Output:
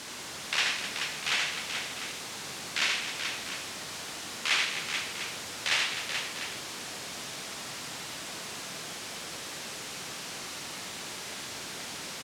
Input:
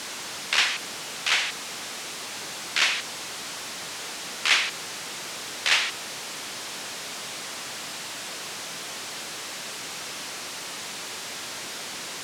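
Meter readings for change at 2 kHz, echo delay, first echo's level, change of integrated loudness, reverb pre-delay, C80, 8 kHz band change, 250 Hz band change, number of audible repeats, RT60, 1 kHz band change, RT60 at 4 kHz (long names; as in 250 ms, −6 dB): −4.0 dB, 78 ms, −4.5 dB, −4.0 dB, no reverb audible, no reverb audible, −4.5 dB, −1.0 dB, 4, no reverb audible, −4.0 dB, no reverb audible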